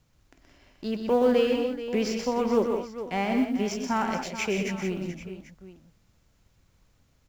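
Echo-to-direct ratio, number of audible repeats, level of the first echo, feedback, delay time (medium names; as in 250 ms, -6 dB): -3.5 dB, 4, -7.0 dB, no regular repeats, 124 ms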